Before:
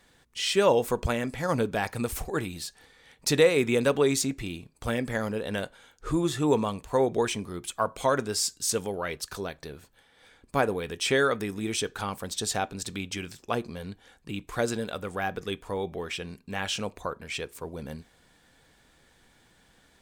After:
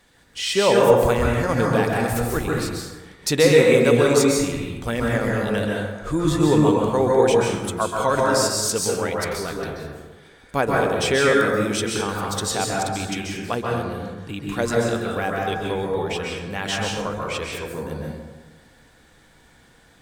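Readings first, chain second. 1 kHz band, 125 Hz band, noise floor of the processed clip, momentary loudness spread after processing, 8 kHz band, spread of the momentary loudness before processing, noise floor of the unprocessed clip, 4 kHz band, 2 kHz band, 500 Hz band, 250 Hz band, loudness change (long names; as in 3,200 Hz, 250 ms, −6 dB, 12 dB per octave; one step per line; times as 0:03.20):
+8.0 dB, +9.5 dB, −54 dBFS, 14 LU, +5.5 dB, 15 LU, −62 dBFS, +5.5 dB, +7.5 dB, +8.0 dB, +8.0 dB, +7.5 dB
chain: dense smooth reverb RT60 1.3 s, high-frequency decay 0.45×, pre-delay 120 ms, DRR −2.5 dB
level +3 dB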